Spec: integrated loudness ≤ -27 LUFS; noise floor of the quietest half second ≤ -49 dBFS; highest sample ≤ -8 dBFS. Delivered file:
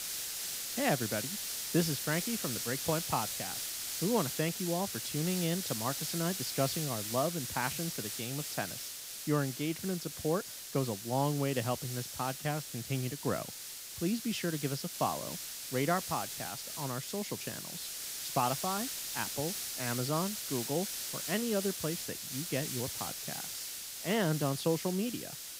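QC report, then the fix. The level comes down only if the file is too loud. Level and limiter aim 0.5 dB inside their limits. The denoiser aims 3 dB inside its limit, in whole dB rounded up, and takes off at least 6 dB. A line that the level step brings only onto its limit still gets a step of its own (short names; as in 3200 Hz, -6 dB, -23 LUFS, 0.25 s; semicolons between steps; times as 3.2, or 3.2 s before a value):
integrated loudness -34.0 LUFS: OK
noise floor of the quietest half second -45 dBFS: fail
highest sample -15.0 dBFS: OK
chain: denoiser 7 dB, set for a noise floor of -45 dBFS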